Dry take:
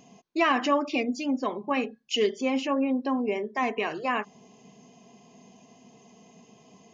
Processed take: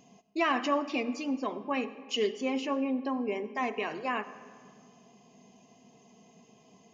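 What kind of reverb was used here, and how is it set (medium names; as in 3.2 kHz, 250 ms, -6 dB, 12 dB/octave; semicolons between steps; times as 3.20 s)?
algorithmic reverb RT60 2 s, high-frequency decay 0.5×, pre-delay 40 ms, DRR 14 dB; trim -4.5 dB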